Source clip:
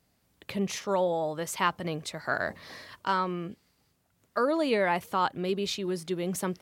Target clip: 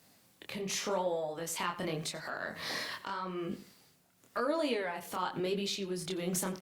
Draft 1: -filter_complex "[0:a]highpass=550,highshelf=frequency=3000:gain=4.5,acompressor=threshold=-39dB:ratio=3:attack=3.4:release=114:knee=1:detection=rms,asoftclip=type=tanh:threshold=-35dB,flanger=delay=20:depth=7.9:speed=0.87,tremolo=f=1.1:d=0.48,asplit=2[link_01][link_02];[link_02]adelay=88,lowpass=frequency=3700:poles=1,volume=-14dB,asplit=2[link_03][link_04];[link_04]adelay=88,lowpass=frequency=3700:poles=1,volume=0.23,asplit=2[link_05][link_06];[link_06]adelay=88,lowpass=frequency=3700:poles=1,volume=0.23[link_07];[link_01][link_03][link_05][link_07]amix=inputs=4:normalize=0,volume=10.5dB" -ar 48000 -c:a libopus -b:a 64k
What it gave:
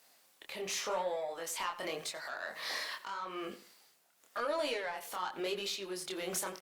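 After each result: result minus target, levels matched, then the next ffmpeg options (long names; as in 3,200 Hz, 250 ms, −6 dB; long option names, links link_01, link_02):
125 Hz band −12.5 dB; soft clipping: distortion +17 dB
-filter_complex "[0:a]highpass=140,highshelf=frequency=3000:gain=4.5,acompressor=threshold=-39dB:ratio=3:attack=3.4:release=114:knee=1:detection=rms,asoftclip=type=tanh:threshold=-35dB,flanger=delay=20:depth=7.9:speed=0.87,tremolo=f=1.1:d=0.48,asplit=2[link_01][link_02];[link_02]adelay=88,lowpass=frequency=3700:poles=1,volume=-14dB,asplit=2[link_03][link_04];[link_04]adelay=88,lowpass=frequency=3700:poles=1,volume=0.23,asplit=2[link_05][link_06];[link_06]adelay=88,lowpass=frequency=3700:poles=1,volume=0.23[link_07];[link_01][link_03][link_05][link_07]amix=inputs=4:normalize=0,volume=10.5dB" -ar 48000 -c:a libopus -b:a 64k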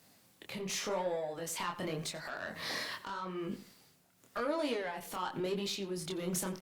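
soft clipping: distortion +17 dB
-filter_complex "[0:a]highpass=140,highshelf=frequency=3000:gain=4.5,acompressor=threshold=-39dB:ratio=3:attack=3.4:release=114:knee=1:detection=rms,asoftclip=type=tanh:threshold=-23.5dB,flanger=delay=20:depth=7.9:speed=0.87,tremolo=f=1.1:d=0.48,asplit=2[link_01][link_02];[link_02]adelay=88,lowpass=frequency=3700:poles=1,volume=-14dB,asplit=2[link_03][link_04];[link_04]adelay=88,lowpass=frequency=3700:poles=1,volume=0.23,asplit=2[link_05][link_06];[link_06]adelay=88,lowpass=frequency=3700:poles=1,volume=0.23[link_07];[link_01][link_03][link_05][link_07]amix=inputs=4:normalize=0,volume=10.5dB" -ar 48000 -c:a libopus -b:a 64k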